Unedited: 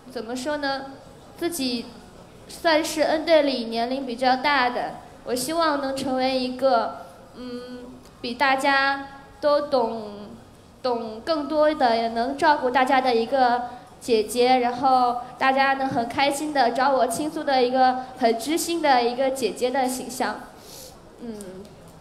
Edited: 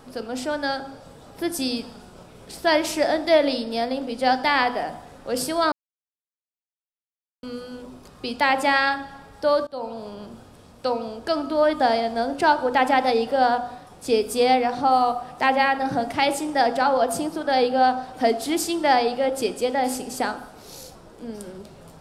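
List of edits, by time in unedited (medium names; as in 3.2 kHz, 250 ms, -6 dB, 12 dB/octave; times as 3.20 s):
5.72–7.43 s: mute
9.67–10.13 s: fade in, from -24 dB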